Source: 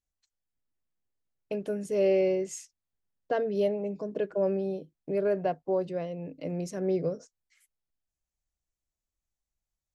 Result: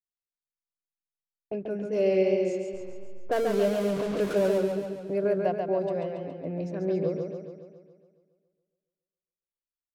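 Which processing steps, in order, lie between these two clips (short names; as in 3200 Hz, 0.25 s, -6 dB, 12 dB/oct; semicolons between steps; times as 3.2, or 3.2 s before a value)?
2.54–4.58 zero-crossing step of -32 dBFS; low-pass opened by the level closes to 320 Hz, open at -25.5 dBFS; gate -41 dBFS, range -24 dB; warbling echo 0.139 s, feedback 58%, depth 64 cents, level -4.5 dB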